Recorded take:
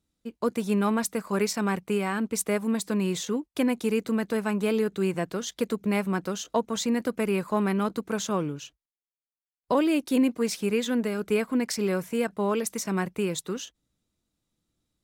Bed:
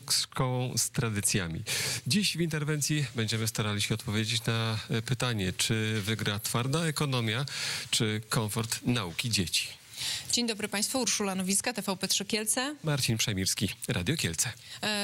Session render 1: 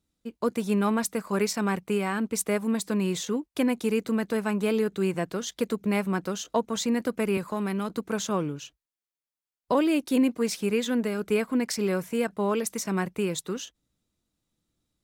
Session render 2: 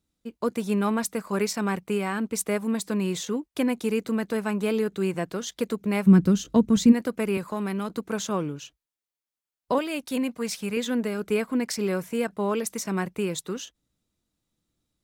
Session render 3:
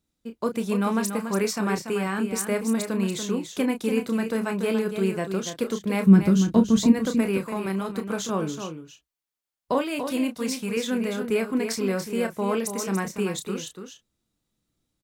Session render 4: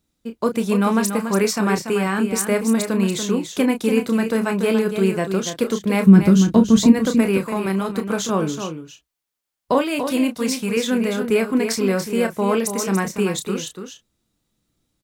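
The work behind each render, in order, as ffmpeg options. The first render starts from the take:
-filter_complex "[0:a]asettb=1/sr,asplit=3[a][b][c];[a]atrim=end=7.374[d];[b]atrim=start=7.37:end=7.9,asetpts=PTS-STARTPTS,afade=t=in:d=0.004:c=qsin,afade=t=out:st=0.526:d=0.004:c=qsin,acrossover=split=130|3000[e][f][g];[f]acompressor=threshold=-29dB:ratio=2:attack=3.2:release=140:knee=2.83:detection=peak[h];[e][h][g]amix=inputs=3:normalize=0[i];[c]atrim=start=7.896[j];[d][i]acrossfade=d=0.004:c1=hsin:c2=qsin[k];[k][j]acrossfade=d=0.004:c1=qsin:c2=hsin"
-filter_complex "[0:a]asplit=3[a][b][c];[a]afade=t=out:st=6.06:d=0.02[d];[b]asubboost=boost=10.5:cutoff=220,afade=t=in:st=6.06:d=0.02,afade=t=out:st=6.91:d=0.02[e];[c]afade=t=in:st=6.91:d=0.02[f];[d][e][f]amix=inputs=3:normalize=0,asettb=1/sr,asplit=3[g][h][i];[g]atrim=end=9.784[j];[h]atrim=start=9.78:end=10.77,asetpts=PTS-STARTPTS,afade=t=in:d=0.004:c=qsin,afade=t=out:st=0.986:d=0.004:c=qsin,equalizer=f=340:t=o:w=0.77:g=-10[k];[i]atrim=start=10.766[l];[j][k]acrossfade=d=0.004:c1=hsin:c2=qsin[m];[m][l]acrossfade=d=0.004:c1=qsin:c2=hsin"
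-filter_complex "[0:a]asplit=2[a][b];[b]adelay=31,volume=-8.5dB[c];[a][c]amix=inputs=2:normalize=0,asplit=2[d][e];[e]aecho=0:1:287:0.398[f];[d][f]amix=inputs=2:normalize=0"
-af "volume=6dB,alimiter=limit=-2dB:level=0:latency=1"

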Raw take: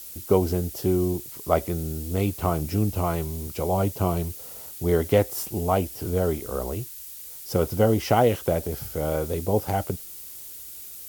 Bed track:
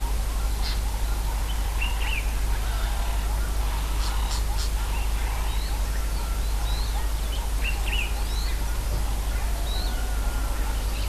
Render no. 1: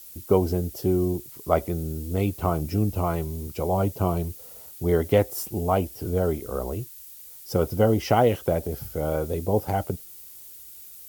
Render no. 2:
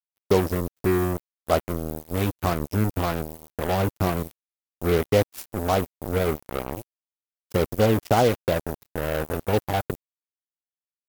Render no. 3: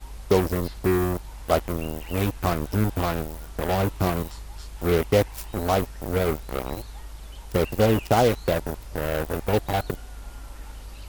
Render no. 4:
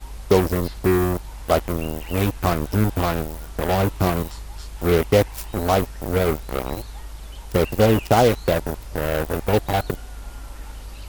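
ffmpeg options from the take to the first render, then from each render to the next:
-af "afftdn=nr=6:nf=-41"
-af "acrusher=bits=3:mix=0:aa=0.5"
-filter_complex "[1:a]volume=-13dB[a];[0:a][a]amix=inputs=2:normalize=0"
-af "volume=3.5dB,alimiter=limit=-3dB:level=0:latency=1"

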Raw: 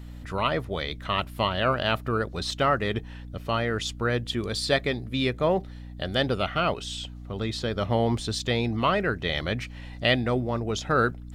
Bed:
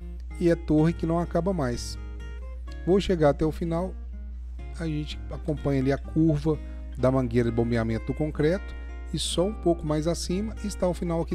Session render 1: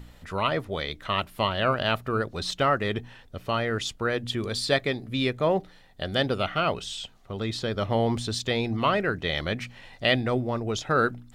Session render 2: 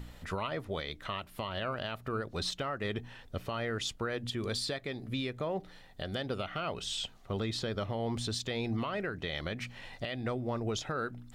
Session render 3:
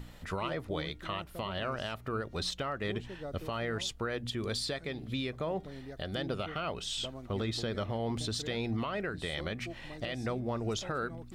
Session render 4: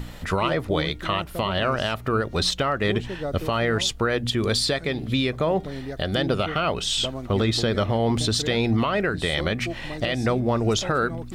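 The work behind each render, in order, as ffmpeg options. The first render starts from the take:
-af "bandreject=f=60:t=h:w=4,bandreject=f=120:t=h:w=4,bandreject=f=180:t=h:w=4,bandreject=f=240:t=h:w=4,bandreject=f=300:t=h:w=4"
-af "acompressor=threshold=-25dB:ratio=12,alimiter=level_in=1dB:limit=-24dB:level=0:latency=1:release=335,volume=-1dB"
-filter_complex "[1:a]volume=-21.5dB[a];[0:a][a]amix=inputs=2:normalize=0"
-af "volume=12dB"

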